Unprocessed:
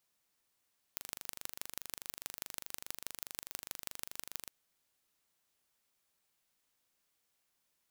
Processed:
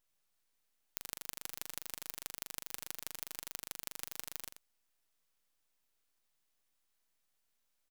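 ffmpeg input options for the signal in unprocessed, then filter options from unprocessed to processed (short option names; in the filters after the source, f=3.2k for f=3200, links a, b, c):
-f lavfi -i "aevalsrc='0.299*eq(mod(n,1778),0)*(0.5+0.5*eq(mod(n,7112),0))':d=3.54:s=44100"
-filter_complex "[0:a]asplit=2[a][b];[b]aecho=0:1:87:0.422[c];[a][c]amix=inputs=2:normalize=0,aeval=exprs='abs(val(0))':c=same"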